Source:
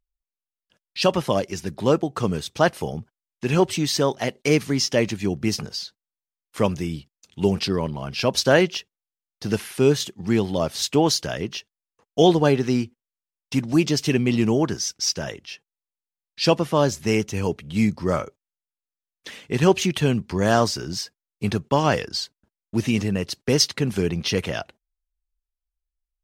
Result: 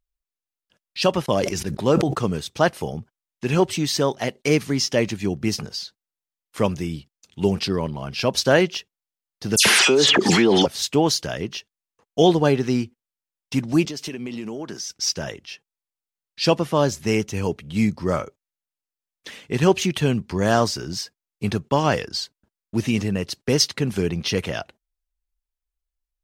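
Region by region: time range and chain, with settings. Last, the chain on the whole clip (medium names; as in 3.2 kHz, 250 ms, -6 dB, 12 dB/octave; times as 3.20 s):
1.26–2.19 s: gate -40 dBFS, range -23 dB + decay stretcher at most 37 dB/s
9.56–10.66 s: band-pass 330–7000 Hz + phase dispersion lows, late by 97 ms, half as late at 2.6 kHz + level flattener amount 100%
13.85–14.90 s: high-pass 190 Hz + compression 10:1, threshold -27 dBFS
whole clip: none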